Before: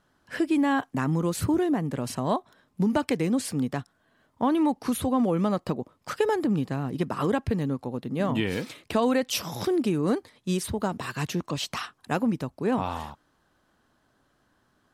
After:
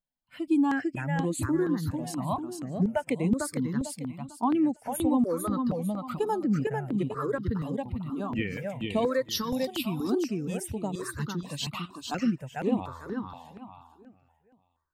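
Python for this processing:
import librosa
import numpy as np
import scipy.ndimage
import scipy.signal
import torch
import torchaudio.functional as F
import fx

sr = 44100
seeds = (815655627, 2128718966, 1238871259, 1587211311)

p1 = fx.bin_expand(x, sr, power=1.5)
p2 = p1 + fx.echo_feedback(p1, sr, ms=448, feedback_pct=31, wet_db=-3.5, dry=0)
p3 = fx.phaser_held(p2, sr, hz=4.2, low_hz=360.0, high_hz=5300.0)
y = p3 * 10.0 ** (1.5 / 20.0)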